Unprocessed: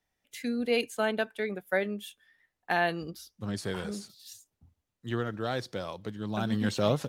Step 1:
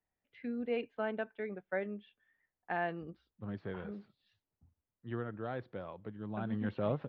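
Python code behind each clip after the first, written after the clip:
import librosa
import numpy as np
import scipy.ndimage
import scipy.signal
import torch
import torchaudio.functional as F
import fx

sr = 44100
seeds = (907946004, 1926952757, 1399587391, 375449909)

y = scipy.signal.sosfilt(scipy.signal.bessel(6, 1800.0, 'lowpass', norm='mag', fs=sr, output='sos'), x)
y = F.gain(torch.from_numpy(y), -7.0).numpy()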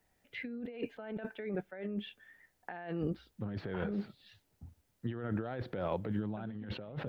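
y = fx.over_compress(x, sr, threshold_db=-47.0, ratio=-1.0)
y = fx.peak_eq(y, sr, hz=1100.0, db=-5.5, octaves=0.29)
y = F.gain(torch.from_numpy(y), 8.0).numpy()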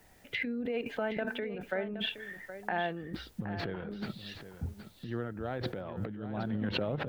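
y = fx.over_compress(x, sr, threshold_db=-45.0, ratio=-1.0)
y = y + 10.0 ** (-11.5 / 20.0) * np.pad(y, (int(770 * sr / 1000.0), 0))[:len(y)]
y = F.gain(torch.from_numpy(y), 8.5).numpy()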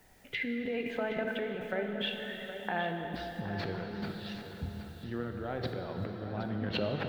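y = fx.rev_plate(x, sr, seeds[0], rt60_s=4.9, hf_ratio=0.75, predelay_ms=0, drr_db=3.5)
y = F.gain(torch.from_numpy(y), -1.0).numpy()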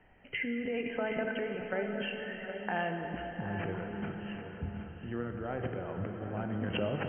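y = fx.brickwall_lowpass(x, sr, high_hz=3200.0)
y = y + 10.0 ** (-13.5 / 20.0) * np.pad(y, (int(717 * sr / 1000.0), 0))[:len(y)]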